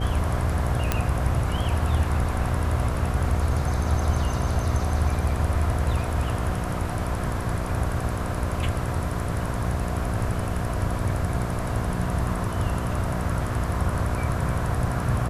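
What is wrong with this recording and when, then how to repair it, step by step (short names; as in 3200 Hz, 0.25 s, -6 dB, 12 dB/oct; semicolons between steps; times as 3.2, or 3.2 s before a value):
buzz 60 Hz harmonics 12 -29 dBFS
0.92 pop -7 dBFS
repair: de-click; de-hum 60 Hz, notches 12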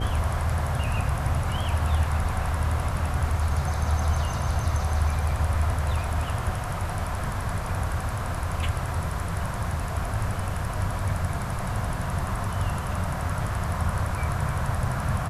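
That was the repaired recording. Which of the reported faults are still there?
none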